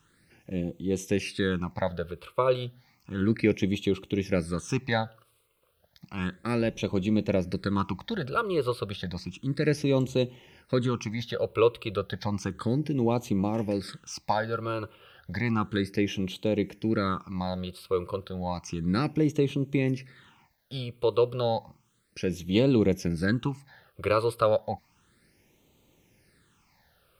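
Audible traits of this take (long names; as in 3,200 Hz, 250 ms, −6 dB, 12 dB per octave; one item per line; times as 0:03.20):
a quantiser's noise floor 12 bits, dither none
phaser sweep stages 8, 0.32 Hz, lowest notch 230–1,600 Hz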